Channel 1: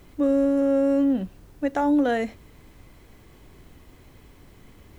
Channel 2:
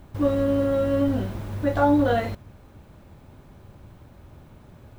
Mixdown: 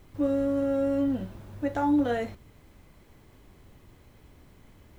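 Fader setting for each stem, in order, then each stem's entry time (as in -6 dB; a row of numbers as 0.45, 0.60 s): -6.0, -12.0 dB; 0.00, 0.00 s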